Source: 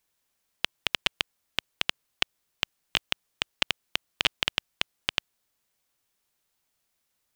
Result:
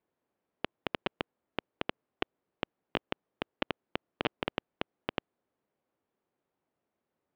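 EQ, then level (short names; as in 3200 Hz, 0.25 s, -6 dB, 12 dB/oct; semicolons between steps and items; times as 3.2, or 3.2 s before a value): band-pass 350 Hz, Q 0.85; air absorption 210 m; +7.5 dB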